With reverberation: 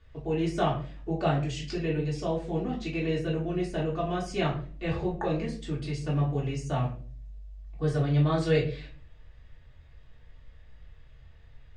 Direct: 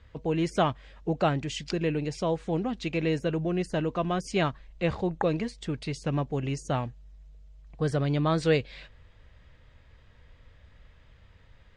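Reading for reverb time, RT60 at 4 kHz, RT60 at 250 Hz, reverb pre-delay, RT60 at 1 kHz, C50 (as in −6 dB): 0.45 s, 0.30 s, 0.65 s, 3 ms, 0.35 s, 8.5 dB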